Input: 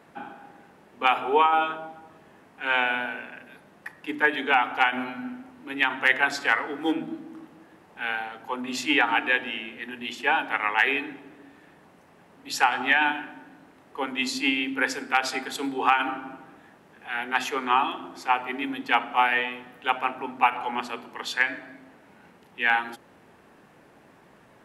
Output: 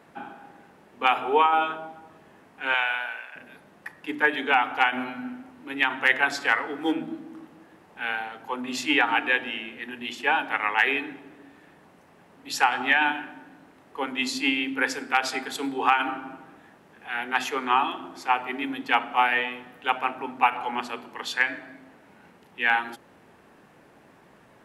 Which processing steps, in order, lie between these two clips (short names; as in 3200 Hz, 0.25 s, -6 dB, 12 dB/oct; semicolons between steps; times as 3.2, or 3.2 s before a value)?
2.74–3.36 HPF 840 Hz 12 dB/oct